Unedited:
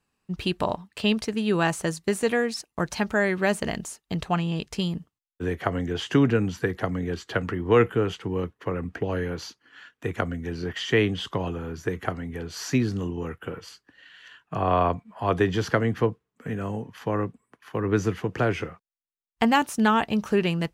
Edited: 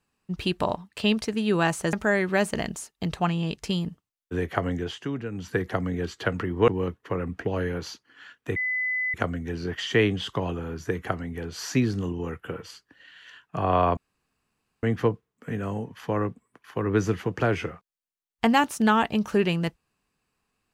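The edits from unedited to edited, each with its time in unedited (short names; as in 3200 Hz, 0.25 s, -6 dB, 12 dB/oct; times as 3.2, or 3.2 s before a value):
1.93–3.02 cut
5.85–6.67 dip -11.5 dB, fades 0.27 s
7.77–8.24 cut
10.12 add tone 2010 Hz -24 dBFS 0.58 s
14.95–15.81 room tone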